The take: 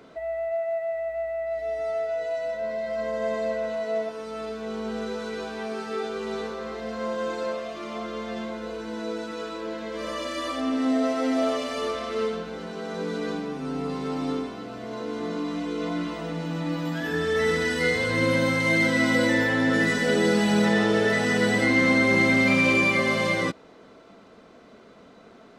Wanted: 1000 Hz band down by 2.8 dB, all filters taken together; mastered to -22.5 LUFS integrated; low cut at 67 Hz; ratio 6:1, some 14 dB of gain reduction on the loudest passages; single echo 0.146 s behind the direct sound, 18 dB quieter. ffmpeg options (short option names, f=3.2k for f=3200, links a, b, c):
-af "highpass=67,equalizer=f=1k:t=o:g=-4,acompressor=threshold=-33dB:ratio=6,aecho=1:1:146:0.126,volume=13dB"